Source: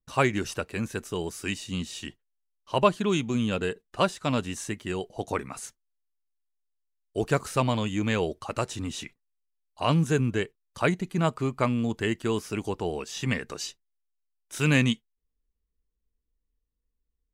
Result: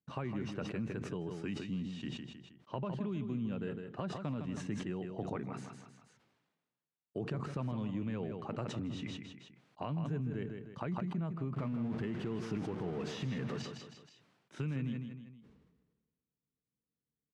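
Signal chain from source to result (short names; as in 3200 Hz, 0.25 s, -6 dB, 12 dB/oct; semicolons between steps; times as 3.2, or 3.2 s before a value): 11.56–13.62 zero-crossing step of -25.5 dBFS; HPF 130 Hz 24 dB/oct; tone controls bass +11 dB, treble -4 dB; limiter -14.5 dBFS, peak gain reduction 10 dB; compressor 5:1, threshold -31 dBFS, peak gain reduction 12.5 dB; tape spacing loss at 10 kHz 25 dB; feedback echo 0.158 s, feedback 26%, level -9 dB; sustainer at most 43 dB/s; gain -4.5 dB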